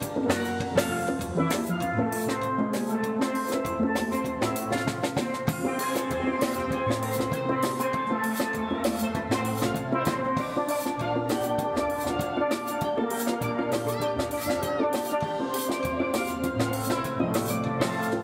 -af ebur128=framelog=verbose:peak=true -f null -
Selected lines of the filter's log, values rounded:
Integrated loudness:
  I:         -27.6 LUFS
  Threshold: -37.6 LUFS
Loudness range:
  LRA:         0.5 LU
  Threshold: -47.6 LUFS
  LRA low:   -27.9 LUFS
  LRA high:  -27.3 LUFS
True peak:
  Peak:      -12.3 dBFS